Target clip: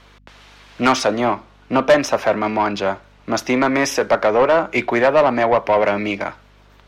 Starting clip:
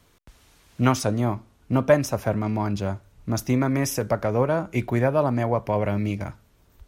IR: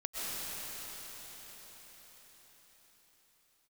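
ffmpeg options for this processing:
-filter_complex "[0:a]acrossover=split=210 5000:gain=0.224 1 0.141[a][b][c];[a][b][c]amix=inputs=3:normalize=0,asplit=2[d][e];[e]highpass=f=720:p=1,volume=19dB,asoftclip=type=tanh:threshold=-6dB[f];[d][f]amix=inputs=2:normalize=0,lowpass=f=7.2k:p=1,volume=-6dB,aeval=exprs='val(0)+0.00251*(sin(2*PI*50*n/s)+sin(2*PI*2*50*n/s)/2+sin(2*PI*3*50*n/s)/3+sin(2*PI*4*50*n/s)/4+sin(2*PI*5*50*n/s)/5)':c=same,volume=2dB"

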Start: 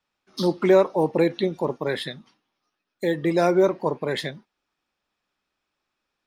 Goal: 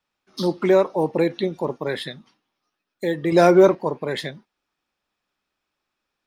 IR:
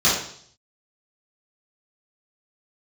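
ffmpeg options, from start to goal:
-filter_complex "[0:a]asettb=1/sr,asplit=3[a][b][c];[a]atrim=end=3.324[d];[b]atrim=start=3.32:end=3.75,asetpts=PTS-STARTPTS,afade=t=in:d=0.004:c=qsin,afade=t=out:st=0.426:d=0.004:c=qsin,acontrast=68[e];[c]atrim=start=3.746[f];[d][e]acrossfade=d=0.004:c1=hsin:c2=qsin[g];[g][f]acrossfade=d=0.004:c1=qsin:c2=hsin"

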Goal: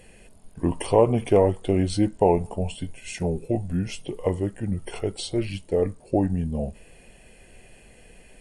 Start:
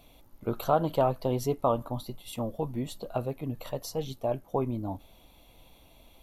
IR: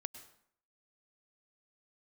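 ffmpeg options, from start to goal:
-af "asetrate=32667,aresample=44100,volume=6.5dB"

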